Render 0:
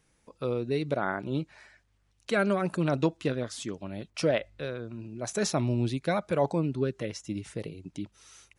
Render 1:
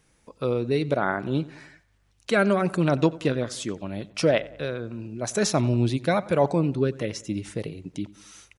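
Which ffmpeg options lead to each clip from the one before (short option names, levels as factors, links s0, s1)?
-filter_complex "[0:a]asplit=2[s0][s1];[s1]adelay=92,lowpass=f=3300:p=1,volume=0.106,asplit=2[s2][s3];[s3]adelay=92,lowpass=f=3300:p=1,volume=0.53,asplit=2[s4][s5];[s5]adelay=92,lowpass=f=3300:p=1,volume=0.53,asplit=2[s6][s7];[s7]adelay=92,lowpass=f=3300:p=1,volume=0.53[s8];[s0][s2][s4][s6][s8]amix=inputs=5:normalize=0,volume=1.78"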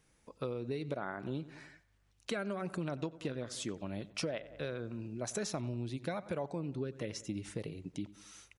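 -af "acompressor=threshold=0.0447:ratio=12,volume=0.473"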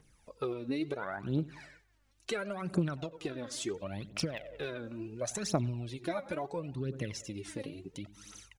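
-af "aphaser=in_gain=1:out_gain=1:delay=3.8:decay=0.68:speed=0.72:type=triangular"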